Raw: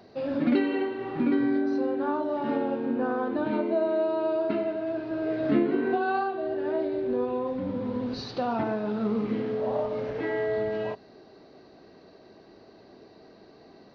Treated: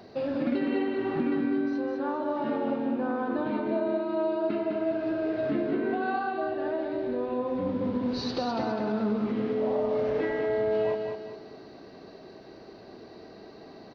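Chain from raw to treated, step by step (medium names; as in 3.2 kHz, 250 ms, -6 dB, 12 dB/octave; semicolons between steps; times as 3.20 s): compression 4:1, threshold -31 dBFS, peak gain reduction 11 dB; on a send: feedback delay 204 ms, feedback 40%, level -5 dB; on the sum: trim +3.5 dB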